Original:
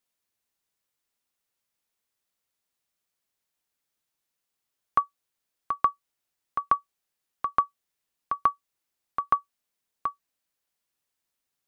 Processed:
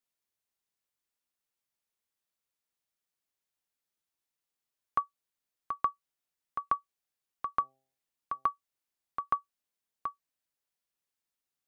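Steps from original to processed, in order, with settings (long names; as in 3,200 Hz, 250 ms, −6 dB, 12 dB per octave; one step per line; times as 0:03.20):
0:07.57–0:08.46: hum removal 132.9 Hz, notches 6
level −6.5 dB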